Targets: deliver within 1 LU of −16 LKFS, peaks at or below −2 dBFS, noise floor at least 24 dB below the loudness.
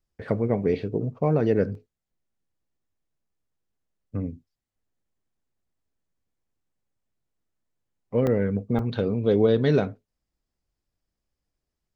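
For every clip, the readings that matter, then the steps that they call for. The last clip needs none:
number of dropouts 3; longest dropout 2.0 ms; integrated loudness −24.5 LKFS; sample peak −9.0 dBFS; target loudness −16.0 LKFS
→ repair the gap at 0:01.75/0:08.27/0:08.79, 2 ms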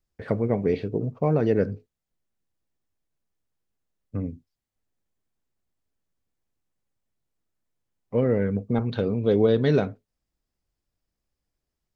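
number of dropouts 0; integrated loudness −24.5 LKFS; sample peak −9.0 dBFS; target loudness −16.0 LKFS
→ level +8.5 dB
brickwall limiter −2 dBFS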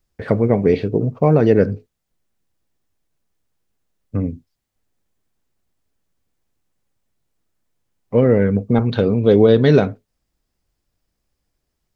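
integrated loudness −16.5 LKFS; sample peak −2.0 dBFS; background noise floor −77 dBFS

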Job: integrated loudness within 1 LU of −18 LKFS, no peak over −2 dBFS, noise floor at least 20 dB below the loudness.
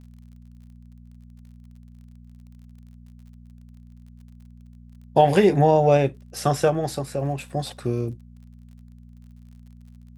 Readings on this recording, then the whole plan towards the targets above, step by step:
crackle rate 43 per second; mains hum 60 Hz; hum harmonics up to 240 Hz; level of the hum −44 dBFS; integrated loudness −21.5 LKFS; sample peak −4.5 dBFS; target loudness −18.0 LKFS
→ click removal
hum removal 60 Hz, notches 4
level +3.5 dB
brickwall limiter −2 dBFS

